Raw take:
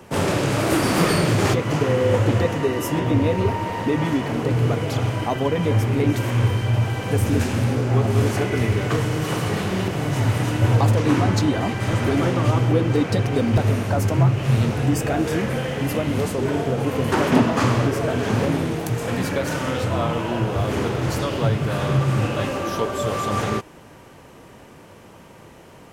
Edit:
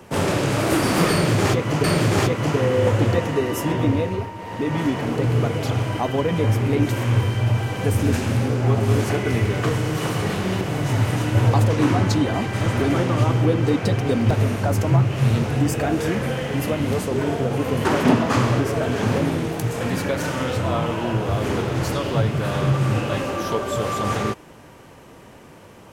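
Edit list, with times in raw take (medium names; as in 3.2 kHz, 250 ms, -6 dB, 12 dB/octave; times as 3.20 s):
1.11–1.84 s: loop, 2 plays
3.11–4.12 s: dip -10 dB, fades 0.50 s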